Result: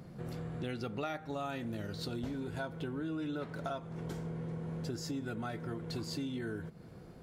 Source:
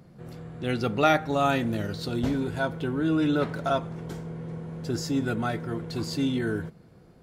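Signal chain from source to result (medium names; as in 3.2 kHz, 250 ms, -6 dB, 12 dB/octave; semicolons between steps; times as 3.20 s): compression 6:1, threshold -39 dBFS, peak gain reduction 21 dB; trim +2 dB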